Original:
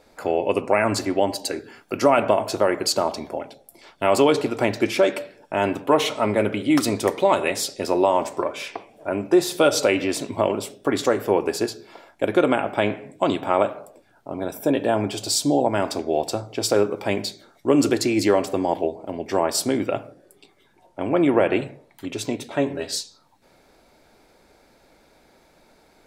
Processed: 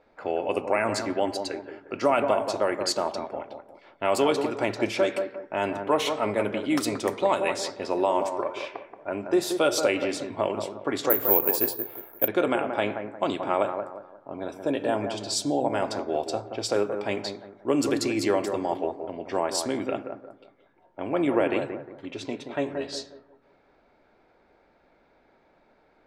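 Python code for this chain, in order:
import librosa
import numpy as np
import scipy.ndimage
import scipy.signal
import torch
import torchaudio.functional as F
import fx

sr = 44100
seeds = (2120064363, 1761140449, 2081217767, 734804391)

y = fx.env_lowpass(x, sr, base_hz=2300.0, full_db=-15.5)
y = fx.low_shelf(y, sr, hz=280.0, db=-5.0)
y = fx.echo_bbd(y, sr, ms=178, stages=2048, feedback_pct=34, wet_db=-7.5)
y = fx.resample_bad(y, sr, factor=3, down='none', up='zero_stuff', at=(11.1, 12.28))
y = y * 10.0 ** (-4.5 / 20.0)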